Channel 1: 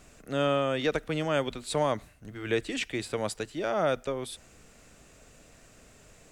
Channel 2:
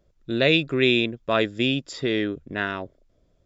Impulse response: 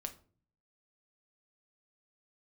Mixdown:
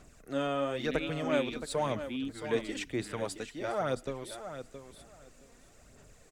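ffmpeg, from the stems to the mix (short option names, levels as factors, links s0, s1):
-filter_complex "[0:a]aphaser=in_gain=1:out_gain=1:delay=4.3:decay=0.48:speed=1:type=sinusoidal,volume=0.531,asplit=2[s0][s1];[s1]volume=0.299[s2];[1:a]asubboost=boost=12:cutoff=95,asplit=3[s3][s4][s5];[s3]bandpass=f=270:t=q:w=8,volume=1[s6];[s4]bandpass=f=2290:t=q:w=8,volume=0.501[s7];[s5]bandpass=f=3010:t=q:w=8,volume=0.355[s8];[s6][s7][s8]amix=inputs=3:normalize=0,adelay=500,volume=0.562[s9];[s2]aecho=0:1:670|1340|2010:1|0.17|0.0289[s10];[s0][s9][s10]amix=inputs=3:normalize=0,equalizer=f=2800:t=o:w=0.72:g=-3.5"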